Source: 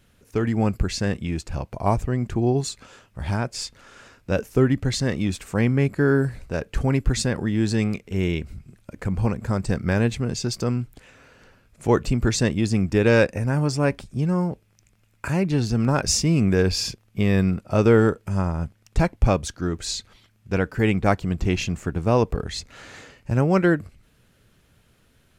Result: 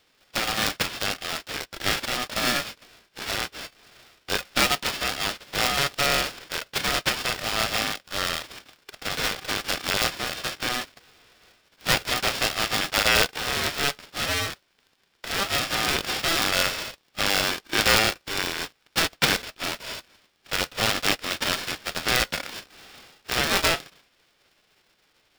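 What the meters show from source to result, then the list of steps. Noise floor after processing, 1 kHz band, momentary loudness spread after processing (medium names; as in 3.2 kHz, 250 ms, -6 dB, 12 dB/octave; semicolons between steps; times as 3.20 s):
-67 dBFS, +2.0 dB, 11 LU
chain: formants flattened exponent 0.1; brick-wall FIR band-pass 200–4700 Hz; polarity switched at an audio rate 990 Hz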